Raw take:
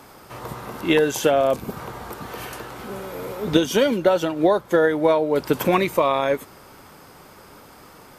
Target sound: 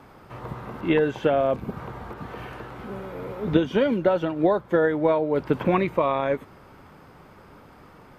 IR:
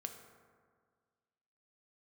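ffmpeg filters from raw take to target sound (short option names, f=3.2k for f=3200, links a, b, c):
-filter_complex "[0:a]acrossover=split=4000[a][b];[b]acompressor=threshold=-44dB:ratio=4:attack=1:release=60[c];[a][c]amix=inputs=2:normalize=0,bass=f=250:g=5,treble=f=4k:g=-14,volume=-3.5dB"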